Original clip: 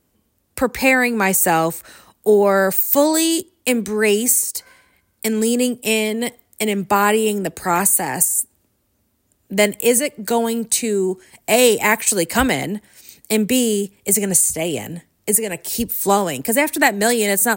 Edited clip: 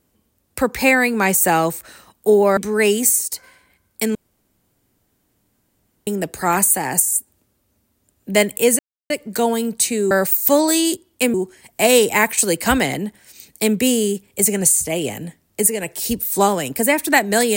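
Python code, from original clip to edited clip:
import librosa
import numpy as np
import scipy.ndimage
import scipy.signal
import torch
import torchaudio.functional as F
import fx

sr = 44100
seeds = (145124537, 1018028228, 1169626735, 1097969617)

y = fx.edit(x, sr, fx.move(start_s=2.57, length_s=1.23, to_s=11.03),
    fx.room_tone_fill(start_s=5.38, length_s=1.92),
    fx.insert_silence(at_s=10.02, length_s=0.31), tone=tone)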